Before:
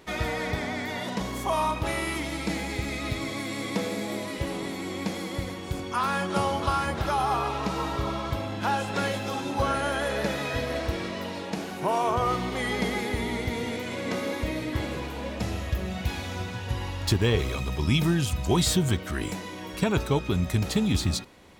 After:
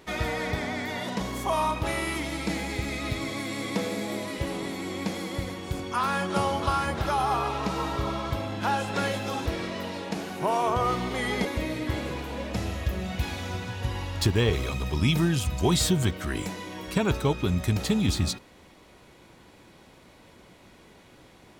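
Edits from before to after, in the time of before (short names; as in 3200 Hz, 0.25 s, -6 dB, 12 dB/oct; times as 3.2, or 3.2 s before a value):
9.46–10.87 cut
12.86–14.31 cut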